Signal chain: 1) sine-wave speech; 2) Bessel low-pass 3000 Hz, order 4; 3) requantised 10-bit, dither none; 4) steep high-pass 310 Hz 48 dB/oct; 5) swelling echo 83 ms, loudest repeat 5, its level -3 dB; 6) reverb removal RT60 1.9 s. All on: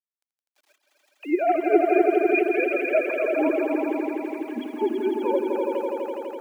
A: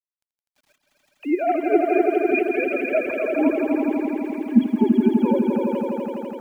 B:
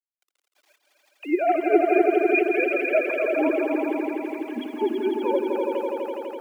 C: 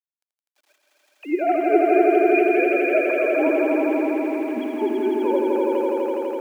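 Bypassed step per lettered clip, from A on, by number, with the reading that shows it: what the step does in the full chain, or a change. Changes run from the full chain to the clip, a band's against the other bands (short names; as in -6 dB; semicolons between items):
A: 4, 250 Hz band +6.0 dB; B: 2, 2 kHz band +1.5 dB; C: 6, loudness change +3.5 LU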